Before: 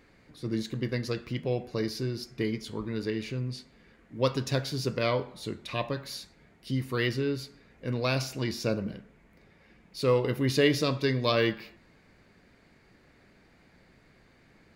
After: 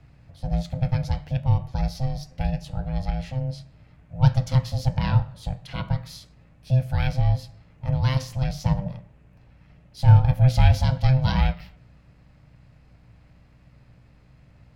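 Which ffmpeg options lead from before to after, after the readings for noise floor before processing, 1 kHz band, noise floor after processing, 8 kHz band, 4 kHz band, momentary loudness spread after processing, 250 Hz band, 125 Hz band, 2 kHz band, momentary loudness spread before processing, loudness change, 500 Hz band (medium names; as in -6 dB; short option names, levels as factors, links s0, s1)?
-61 dBFS, +5.0 dB, -54 dBFS, no reading, -3.0 dB, 15 LU, +1.0 dB, +13.0 dB, -2.5 dB, 14 LU, +6.5 dB, -7.5 dB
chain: -af "aeval=exprs='val(0)*sin(2*PI*390*n/s)':c=same,lowshelf=f=190:t=q:w=3:g=12.5,aeval=exprs='val(0)+0.00178*(sin(2*PI*60*n/s)+sin(2*PI*2*60*n/s)/2+sin(2*PI*3*60*n/s)/3+sin(2*PI*4*60*n/s)/4+sin(2*PI*5*60*n/s)/5)':c=same"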